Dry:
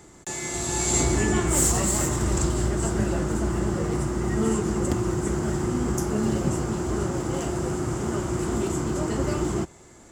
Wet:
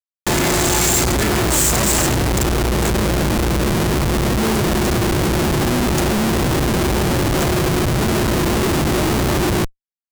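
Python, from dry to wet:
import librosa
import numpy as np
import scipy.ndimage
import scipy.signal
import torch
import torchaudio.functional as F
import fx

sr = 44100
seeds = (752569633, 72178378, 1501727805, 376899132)

y = fx.schmitt(x, sr, flips_db=-29.5)
y = fx.peak_eq(y, sr, hz=13000.0, db=4.0, octaves=2.2)
y = y * librosa.db_to_amplitude(8.0)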